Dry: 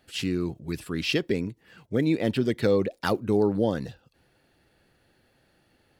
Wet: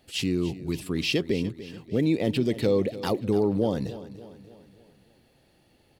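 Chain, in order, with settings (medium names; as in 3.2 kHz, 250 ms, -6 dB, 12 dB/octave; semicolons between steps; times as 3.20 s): peaking EQ 1.5 kHz -9.5 dB 0.64 oct; in parallel at +2 dB: peak limiter -21.5 dBFS, peak gain reduction 10.5 dB; on the sum: feedback delay 292 ms, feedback 49%, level -15 dB; trim -4 dB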